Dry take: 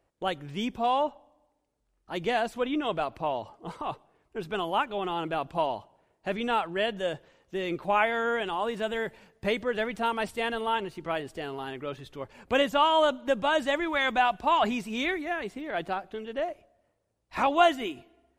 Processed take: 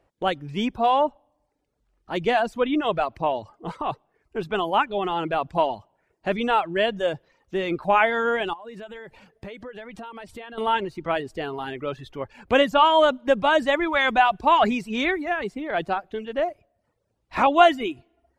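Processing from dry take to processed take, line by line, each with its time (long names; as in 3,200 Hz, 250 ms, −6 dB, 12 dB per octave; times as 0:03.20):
0:08.53–0:10.58: downward compressor 8 to 1, threshold −41 dBFS
whole clip: reverb reduction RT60 0.58 s; high-shelf EQ 6,400 Hz −10.5 dB; level +6.5 dB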